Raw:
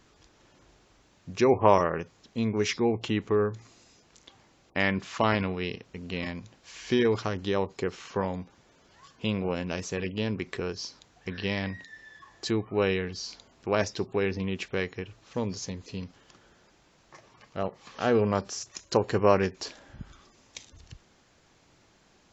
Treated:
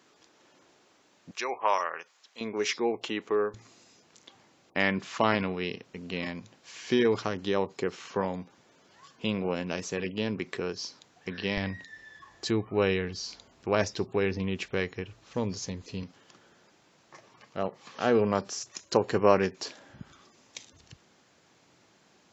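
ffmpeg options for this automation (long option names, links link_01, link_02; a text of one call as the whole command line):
ffmpeg -i in.wav -af "asetnsamples=nb_out_samples=441:pad=0,asendcmd='1.31 highpass f 970;2.41 highpass f 360;3.54 highpass f 140;11.57 highpass f 43;16.03 highpass f 130',highpass=240" out.wav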